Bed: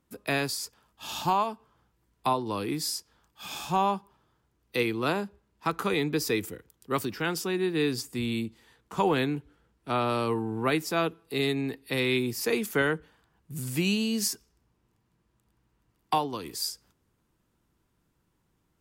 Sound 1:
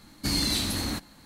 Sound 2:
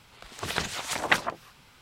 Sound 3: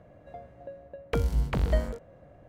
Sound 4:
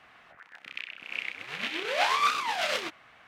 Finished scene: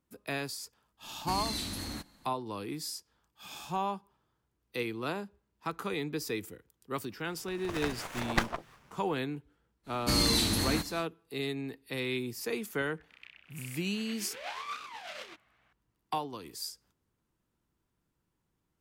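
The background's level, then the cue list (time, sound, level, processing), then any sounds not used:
bed -7.5 dB
1.03 add 1 -9 dB
7.26 add 2 -5 dB + running maximum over 9 samples
9.83 add 1 -0.5 dB, fades 0.10 s + echo 0.602 s -20.5 dB
12.46 add 4 -14.5 dB
not used: 3

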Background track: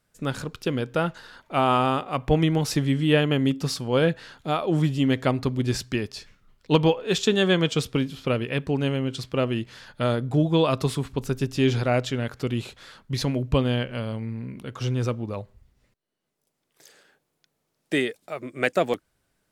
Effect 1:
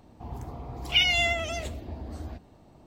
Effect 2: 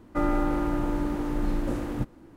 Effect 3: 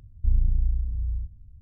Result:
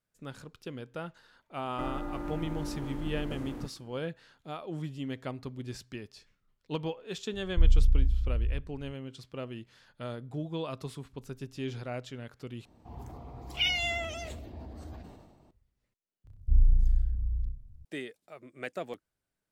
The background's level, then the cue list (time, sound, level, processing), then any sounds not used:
background track -15 dB
1.63 add 2 -9 dB + limiter -18.5 dBFS
7.33 add 3 -11.5 dB + tilt -2.5 dB/oct
12.65 replace with 1 -7 dB + sustainer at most 44 dB/s
16.24 add 3 -4.5 dB + flutter echo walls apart 5.4 m, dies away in 0.47 s

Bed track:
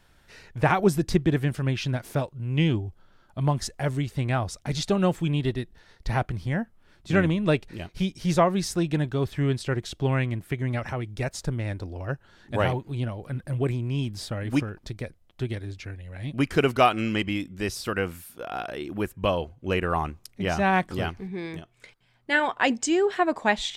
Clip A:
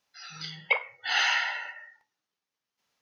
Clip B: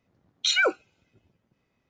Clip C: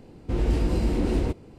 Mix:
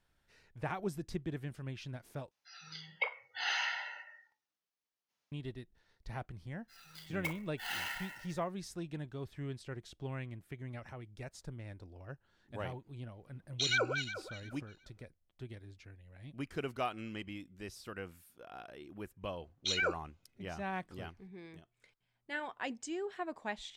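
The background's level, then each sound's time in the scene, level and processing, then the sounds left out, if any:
bed track -17 dB
2.31 replace with A -9.5 dB
6.54 add A -14 dB + clock jitter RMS 0.021 ms
13.15 add B -9.5 dB + regenerating reverse delay 0.179 s, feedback 48%, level -6 dB
19.21 add B -10.5 dB
not used: C

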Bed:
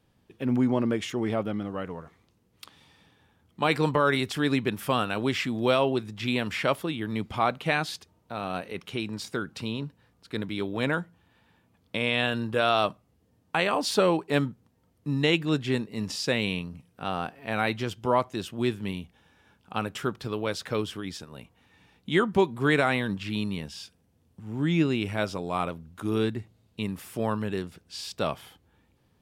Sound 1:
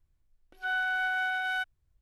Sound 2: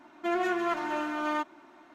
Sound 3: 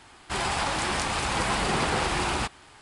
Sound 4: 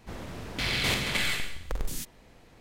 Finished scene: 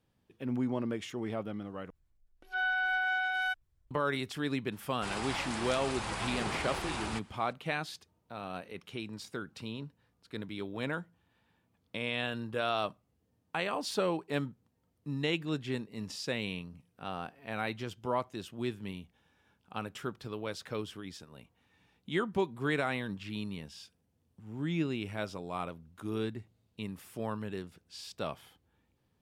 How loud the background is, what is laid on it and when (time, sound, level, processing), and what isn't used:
bed -8.5 dB
1.9 replace with 1 -1 dB + spectral gate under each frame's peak -50 dB strong
4.72 add 3 -10.5 dB
not used: 2, 4

